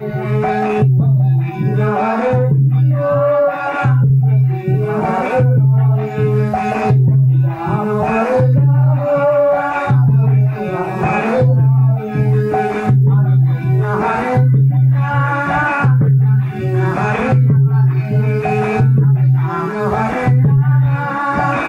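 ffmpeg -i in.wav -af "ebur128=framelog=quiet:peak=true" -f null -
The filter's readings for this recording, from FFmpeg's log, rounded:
Integrated loudness:
  I:         -13.8 LUFS
  Threshold: -23.8 LUFS
Loudness range:
  LRA:         0.6 LU
  Threshold: -33.7 LUFS
  LRA low:   -14.0 LUFS
  LRA high:  -13.4 LUFS
True peak:
  Peak:       -5.2 dBFS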